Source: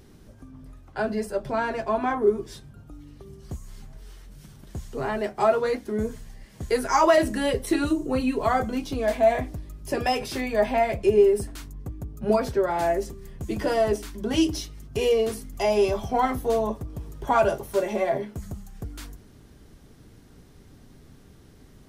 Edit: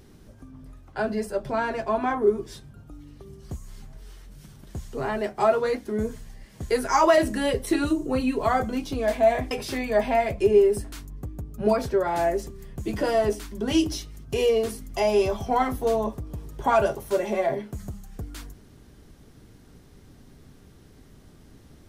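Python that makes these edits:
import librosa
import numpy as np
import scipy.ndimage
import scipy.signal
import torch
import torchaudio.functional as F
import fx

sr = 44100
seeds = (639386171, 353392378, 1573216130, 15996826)

y = fx.edit(x, sr, fx.cut(start_s=9.51, length_s=0.63), tone=tone)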